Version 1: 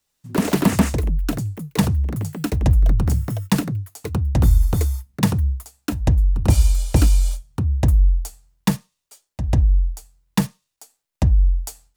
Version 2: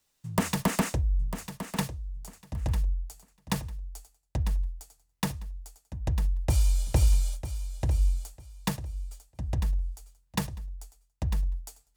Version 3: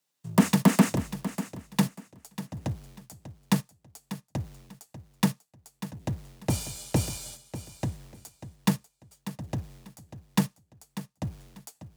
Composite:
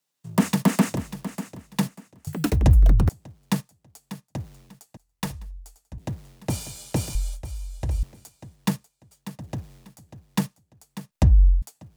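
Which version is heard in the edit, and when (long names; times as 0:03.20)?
3
0:02.27–0:03.09: punch in from 1
0:04.97–0:05.98: punch in from 2
0:07.15–0:08.03: punch in from 2
0:11.11–0:11.62: punch in from 1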